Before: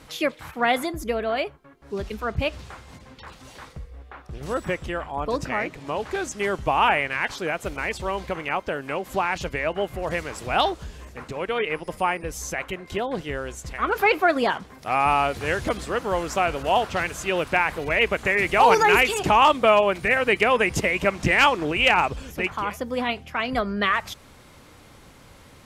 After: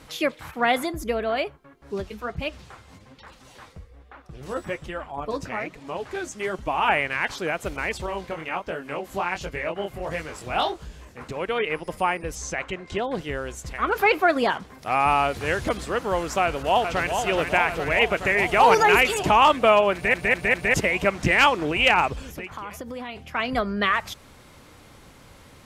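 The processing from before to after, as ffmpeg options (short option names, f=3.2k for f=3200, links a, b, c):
-filter_complex "[0:a]asplit=3[a][b][c];[a]afade=t=out:st=2:d=0.02[d];[b]flanger=delay=3.1:depth=8.6:regen=38:speed=1.2:shape=triangular,afade=t=in:st=2:d=0.02,afade=t=out:st=6.87:d=0.02[e];[c]afade=t=in:st=6.87:d=0.02[f];[d][e][f]amix=inputs=3:normalize=0,asettb=1/sr,asplit=3[g][h][i];[g]atrim=end=8.064[j];[h]atrim=start=8.06:end=11.21,asetpts=PTS-STARTPTS,afade=t=in:d=0.004:c=qsin,afade=t=out:st=3.146:d=0.004:c=qsin,flanger=delay=18.5:depth=7:speed=1.4[k];[i]atrim=start=11.206[l];[j][k]acrossfade=d=0.004:c1=hsin:c2=qsin[m];[m][l]acrossfade=d=0.004:c1=qsin:c2=hsin,asettb=1/sr,asplit=3[n][o][p];[n]atrim=end=12.354[q];[o]atrim=start=12.35:end=13.04,asetpts=PTS-STARTPTS,afade=t=in:d=0.004:c=qsin,afade=t=out:st=0.686:d=0.004:c=qsin,lowpass=f=8.3k:w=0.5412,lowpass=f=8.3k:w=1.3066[r];[p]atrim=start=13.036[s];[q][r]acrossfade=d=0.004:c1=hsin:c2=qsin[t];[t][s]acrossfade=d=0.004:c1=qsin:c2=hsin,asplit=2[u][v];[v]afade=t=in:st=16.42:d=0.01,afade=t=out:st=17.15:d=0.01,aecho=0:1:420|840|1260|1680|2100|2520|2940|3360|3780|4200|4620|5040:0.501187|0.40095|0.32076|0.256608|0.205286|0.164229|0.131383|0.105107|0.0840853|0.0672682|0.0538146|0.0430517[w];[u][w]amix=inputs=2:normalize=0,asplit=3[x][y][z];[x]afade=t=out:st=22.2:d=0.02[aa];[y]acompressor=threshold=-30dB:ratio=10:attack=3.2:release=140:knee=1:detection=peak,afade=t=in:st=22.2:d=0.02,afade=t=out:st=23.15:d=0.02[ab];[z]afade=t=in:st=23.15:d=0.02[ac];[aa][ab][ac]amix=inputs=3:normalize=0,asplit=5[ad][ae][af][ag][ah];[ad]atrim=end=20.142[ai];[ae]atrim=start=19.938:end=20.142[aj];[af]atrim=start=19.938:end=20.142[ak];[ag]atrim=start=19.938:end=20.142[al];[ah]atrim=start=20.738[am];[ai][aj]acrossfade=d=0.004:c1=hsin:c2=hsin[an];[an][ak]acrossfade=d=0.004:c1=hsin:c2=hsin[ao];[ao][al]acrossfade=d=0.004:c1=hsin:c2=hsin[ap];[ap][am]acrossfade=d=0.004:c1=hsin:c2=hsin"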